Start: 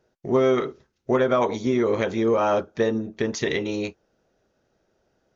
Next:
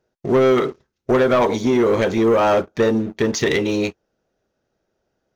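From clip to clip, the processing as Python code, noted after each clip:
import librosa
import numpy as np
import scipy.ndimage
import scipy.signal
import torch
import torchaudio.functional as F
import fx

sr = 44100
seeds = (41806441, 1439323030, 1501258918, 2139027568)

y = fx.leveller(x, sr, passes=2)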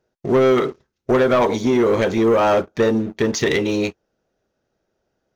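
y = x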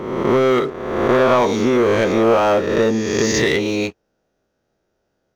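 y = fx.spec_swells(x, sr, rise_s=1.28)
y = y * 10.0 ** (-1.0 / 20.0)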